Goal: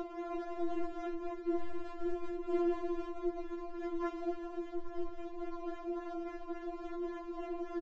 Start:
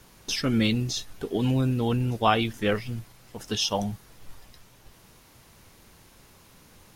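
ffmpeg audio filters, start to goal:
-af "aeval=exprs='val(0)+0.5*0.0335*sgn(val(0))':c=same,crystalizer=i=1.5:c=0,acompressor=mode=upward:threshold=0.0398:ratio=2.5,asubboost=boost=4:cutoff=140,aecho=1:1:190|437|758.1|1176|1718:0.631|0.398|0.251|0.158|0.1,atempo=0.89,aeval=exprs='val(0)+0.0282*(sin(2*PI*60*n/s)+sin(2*PI*2*60*n/s)/2+sin(2*PI*3*60*n/s)/3+sin(2*PI*4*60*n/s)/4+sin(2*PI*5*60*n/s)/5)':c=same,acrusher=samples=18:mix=1:aa=0.000001:lfo=1:lforange=18:lforate=3.6,bandpass=f=140:t=q:w=1.3:csg=0,aresample=16000,asoftclip=type=hard:threshold=0.075,aresample=44100,alimiter=level_in=3.35:limit=0.0631:level=0:latency=1:release=411,volume=0.299,afftfilt=real='re*4*eq(mod(b,16),0)':imag='im*4*eq(mod(b,16),0)':win_size=2048:overlap=0.75,volume=4.47"

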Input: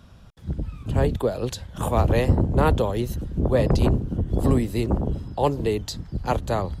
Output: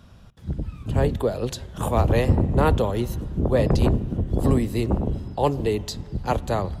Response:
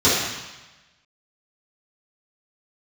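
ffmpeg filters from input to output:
-filter_complex "[0:a]asplit=2[s0][s1];[1:a]atrim=start_sample=2205,asetrate=22932,aresample=44100[s2];[s1][s2]afir=irnorm=-1:irlink=0,volume=0.00562[s3];[s0][s3]amix=inputs=2:normalize=0"

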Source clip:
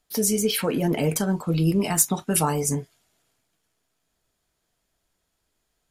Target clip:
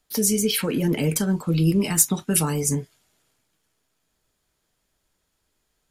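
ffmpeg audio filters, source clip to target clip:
-filter_complex "[0:a]bandreject=f=690:w=12,acrossover=split=480|1300[s0][s1][s2];[s1]acompressor=threshold=0.00708:ratio=6[s3];[s0][s3][s2]amix=inputs=3:normalize=0,volume=1.26"

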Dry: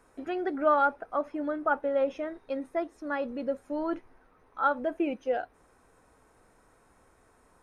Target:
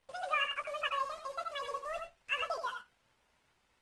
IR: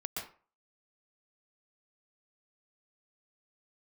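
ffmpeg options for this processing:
-filter_complex "[0:a]acrusher=bits=8:dc=4:mix=0:aa=0.000001,asplit=2[s0][s1];[1:a]atrim=start_sample=2205,highshelf=f=3800:g=4.5,adelay=32[s2];[s1][s2]afir=irnorm=-1:irlink=0,volume=0.531[s3];[s0][s3]amix=inputs=2:normalize=0,aresample=11025,aresample=44100,asetrate=88200,aresample=44100,volume=0.376" -ar 48000 -c:a libopus -b:a 24k

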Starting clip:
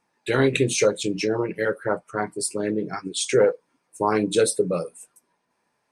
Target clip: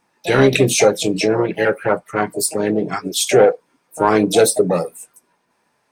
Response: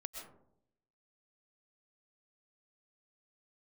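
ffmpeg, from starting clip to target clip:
-filter_complex "[0:a]acontrast=54,asplit=2[s0][s1];[s1]asetrate=66075,aresample=44100,atempo=0.66742,volume=0.282[s2];[s0][s2]amix=inputs=2:normalize=0,volume=1.12"

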